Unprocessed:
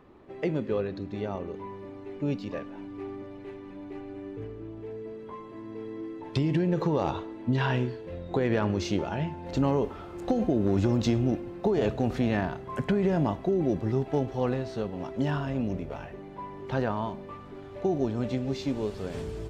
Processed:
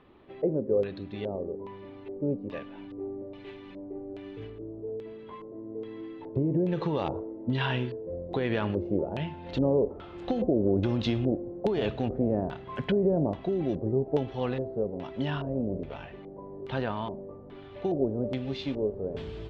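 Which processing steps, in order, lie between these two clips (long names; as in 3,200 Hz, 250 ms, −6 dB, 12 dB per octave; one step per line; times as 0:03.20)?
0:02.90–0:04.50: high-shelf EQ 3,900 Hz +11.5 dB
auto-filter low-pass square 1.2 Hz 530–3,400 Hz
level −3 dB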